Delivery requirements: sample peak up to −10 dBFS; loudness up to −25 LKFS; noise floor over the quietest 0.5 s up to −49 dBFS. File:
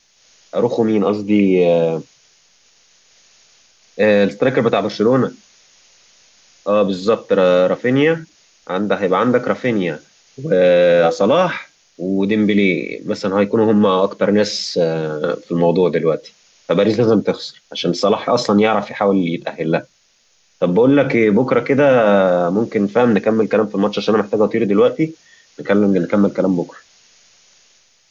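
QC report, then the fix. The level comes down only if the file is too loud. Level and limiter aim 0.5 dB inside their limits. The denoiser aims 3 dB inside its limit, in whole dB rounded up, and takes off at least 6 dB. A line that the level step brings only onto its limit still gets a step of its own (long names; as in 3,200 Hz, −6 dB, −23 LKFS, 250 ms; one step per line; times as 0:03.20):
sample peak −4.5 dBFS: out of spec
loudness −16.0 LKFS: out of spec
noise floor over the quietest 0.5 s −58 dBFS: in spec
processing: level −9.5 dB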